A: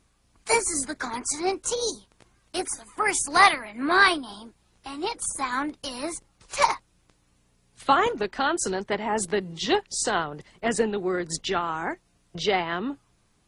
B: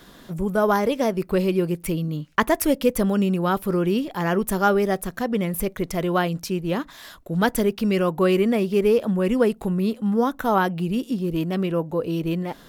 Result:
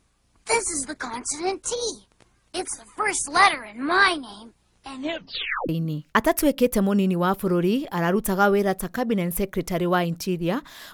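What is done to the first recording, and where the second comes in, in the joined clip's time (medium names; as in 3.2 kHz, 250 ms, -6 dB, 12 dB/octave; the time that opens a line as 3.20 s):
A
4.90 s: tape stop 0.79 s
5.69 s: go over to B from 1.92 s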